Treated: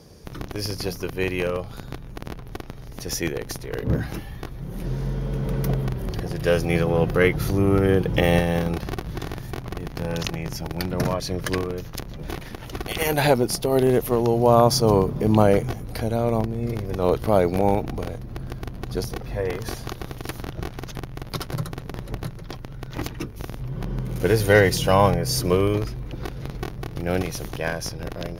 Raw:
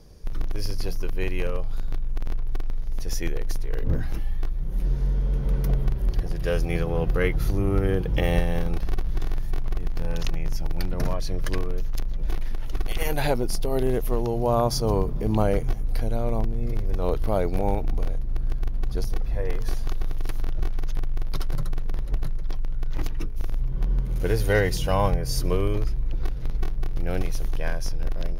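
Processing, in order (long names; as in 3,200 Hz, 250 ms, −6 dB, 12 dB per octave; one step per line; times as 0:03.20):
high-pass filter 100 Hz 12 dB per octave
level +6.5 dB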